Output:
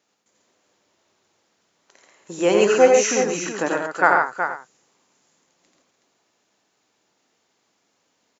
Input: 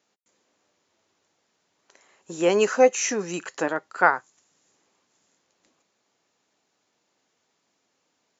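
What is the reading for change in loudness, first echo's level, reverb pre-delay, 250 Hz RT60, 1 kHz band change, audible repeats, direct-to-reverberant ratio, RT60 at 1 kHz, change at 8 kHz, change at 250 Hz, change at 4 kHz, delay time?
+4.0 dB, -3.5 dB, none, none, +4.5 dB, 4, none, none, n/a, +4.5 dB, +4.5 dB, 85 ms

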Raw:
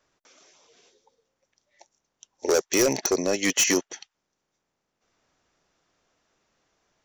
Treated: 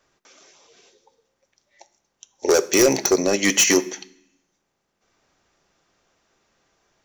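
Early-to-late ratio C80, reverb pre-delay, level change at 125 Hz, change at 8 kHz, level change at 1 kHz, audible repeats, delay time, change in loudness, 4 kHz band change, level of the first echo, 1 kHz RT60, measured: 21.0 dB, 3 ms, +4.5 dB, +4.5 dB, +5.0 dB, none, none, +5.0 dB, +5.0 dB, none, 0.70 s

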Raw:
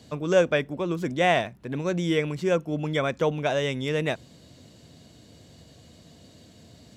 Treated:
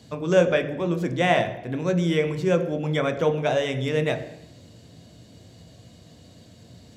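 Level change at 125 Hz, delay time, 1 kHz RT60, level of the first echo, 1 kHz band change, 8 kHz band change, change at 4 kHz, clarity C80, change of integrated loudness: +3.5 dB, none, 0.80 s, none, +1.0 dB, 0.0 dB, +0.5 dB, 13.5 dB, +2.0 dB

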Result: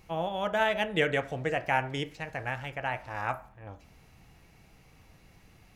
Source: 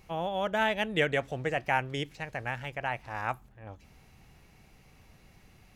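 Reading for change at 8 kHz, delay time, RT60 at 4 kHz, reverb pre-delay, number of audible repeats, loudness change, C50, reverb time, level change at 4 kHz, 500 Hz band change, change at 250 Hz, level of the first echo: 0.0 dB, none, 0.55 s, 5 ms, none, +0.5 dB, 16.0 dB, 0.50 s, 0.0 dB, +1.0 dB, 0.0 dB, none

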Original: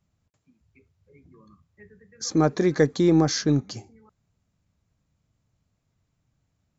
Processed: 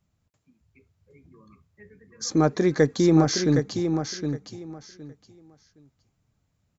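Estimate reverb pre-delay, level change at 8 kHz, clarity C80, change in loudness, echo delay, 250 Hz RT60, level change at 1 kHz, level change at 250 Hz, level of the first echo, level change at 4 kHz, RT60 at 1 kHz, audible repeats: none, n/a, none, -1.0 dB, 0.765 s, none, +1.0 dB, +1.0 dB, -7.0 dB, +1.0 dB, none, 3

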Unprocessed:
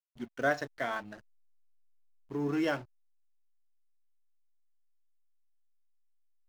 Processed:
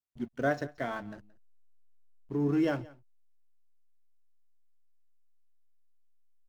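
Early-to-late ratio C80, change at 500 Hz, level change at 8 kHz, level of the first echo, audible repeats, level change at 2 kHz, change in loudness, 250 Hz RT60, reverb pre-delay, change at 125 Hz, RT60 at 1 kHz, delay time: none, +1.0 dB, n/a, -21.5 dB, 1, -3.5 dB, +1.5 dB, none, none, +6.0 dB, none, 0.175 s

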